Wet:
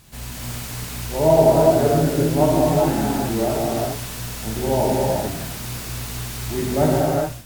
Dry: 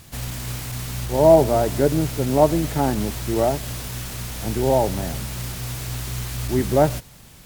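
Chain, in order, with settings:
reverb whose tail is shaped and stops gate 450 ms flat, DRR −6 dB
level −5.5 dB

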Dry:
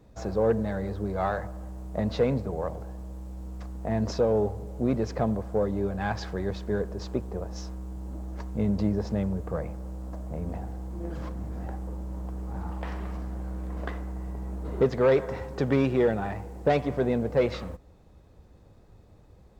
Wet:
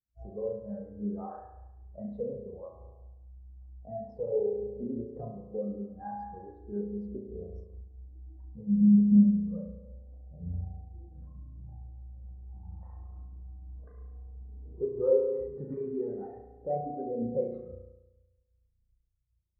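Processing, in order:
dynamic equaliser 1,100 Hz, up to +6 dB, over −43 dBFS, Q 1.5
downward compressor 3 to 1, threshold −33 dBFS, peak gain reduction 13 dB
spring reverb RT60 2.3 s, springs 34 ms, chirp 20 ms, DRR −3 dB
every bin expanded away from the loudest bin 2.5 to 1
level +5 dB

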